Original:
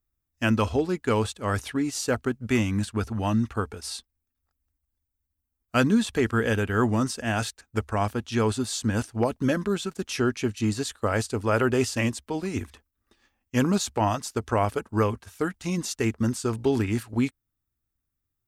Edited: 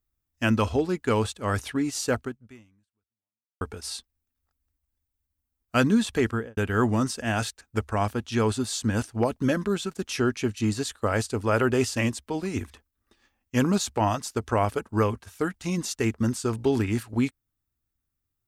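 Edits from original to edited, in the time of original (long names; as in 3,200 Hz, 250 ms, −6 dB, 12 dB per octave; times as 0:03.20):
0:02.19–0:03.61: fade out exponential
0:06.24–0:06.57: fade out and dull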